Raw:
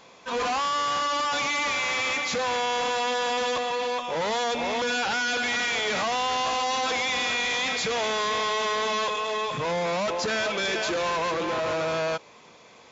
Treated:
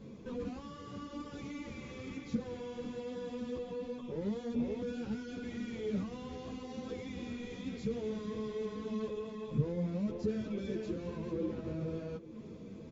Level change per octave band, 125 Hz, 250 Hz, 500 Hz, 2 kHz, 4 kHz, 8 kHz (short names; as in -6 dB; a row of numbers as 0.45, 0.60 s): +2.0 dB, +0.5 dB, -11.5 dB, -27.0 dB, -27.0 dB, n/a